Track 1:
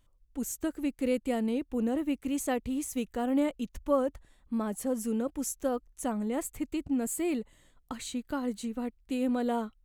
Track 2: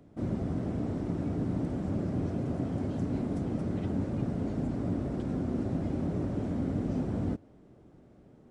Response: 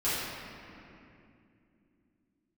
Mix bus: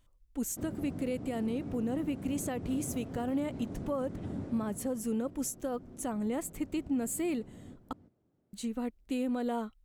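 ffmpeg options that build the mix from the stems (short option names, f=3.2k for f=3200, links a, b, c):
-filter_complex "[0:a]volume=0dB,asplit=3[a][b][c];[a]atrim=end=7.93,asetpts=PTS-STARTPTS,afade=t=out:st=7.926:d=0.004:c=hsin[d];[b]atrim=start=7.93:end=8.53,asetpts=PTS-STARTPTS,volume=0[e];[c]atrim=start=8.53,asetpts=PTS-STARTPTS,afade=t=in:d=0.004:c=hsin[f];[d][e][f]concat=n=3:v=0:a=1[g];[1:a]highpass=51,adelay=400,volume=-7dB,afade=t=out:st=4.39:d=0.51:silence=0.251189,asplit=2[h][i];[i]volume=-9.5dB,aecho=0:1:327:1[j];[g][h][j]amix=inputs=3:normalize=0,alimiter=level_in=0.5dB:limit=-24dB:level=0:latency=1:release=202,volume=-0.5dB"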